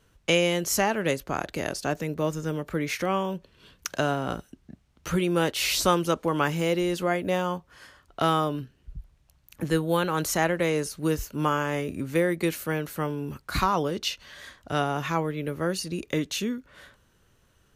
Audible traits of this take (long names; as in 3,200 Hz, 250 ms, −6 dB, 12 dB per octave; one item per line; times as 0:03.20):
background noise floor −64 dBFS
spectral slope −4.5 dB per octave